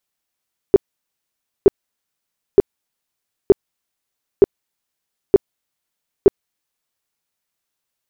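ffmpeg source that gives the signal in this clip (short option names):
-f lavfi -i "aevalsrc='0.708*sin(2*PI*397*mod(t,0.92))*lt(mod(t,0.92),8/397)':d=6.44:s=44100"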